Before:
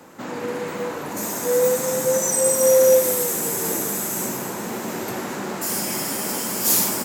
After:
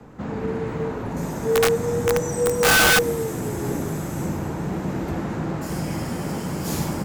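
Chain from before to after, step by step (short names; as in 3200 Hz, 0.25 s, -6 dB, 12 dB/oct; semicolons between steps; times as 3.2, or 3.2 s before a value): RIAA curve playback; wrapped overs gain 9.5 dB; frequency shift -41 Hz; gain -2.5 dB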